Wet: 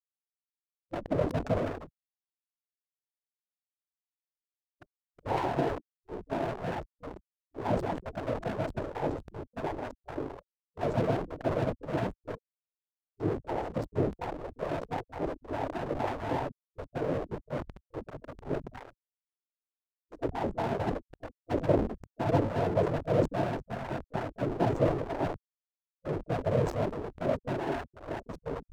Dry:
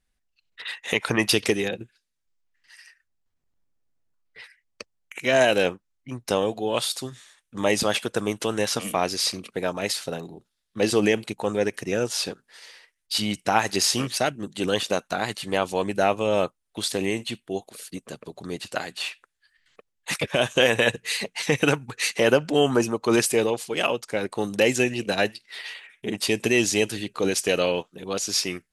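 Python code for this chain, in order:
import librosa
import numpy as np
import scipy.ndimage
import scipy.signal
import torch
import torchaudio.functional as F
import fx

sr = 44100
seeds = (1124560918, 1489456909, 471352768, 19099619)

y = scipy.signal.sosfilt(scipy.signal.cheby2(4, 40, 1000.0, 'lowpass', fs=sr, output='sos'), x)
y = fx.noise_vocoder(y, sr, seeds[0], bands=12)
y = fx.dynamic_eq(y, sr, hz=210.0, q=7.8, threshold_db=-48.0, ratio=4.0, max_db=6)
y = fx.backlash(y, sr, play_db=-35.5)
y = fx.spec_gate(y, sr, threshold_db=-10, keep='weak')
y = fx.sustainer(y, sr, db_per_s=82.0)
y = y * 10.0 ** (7.5 / 20.0)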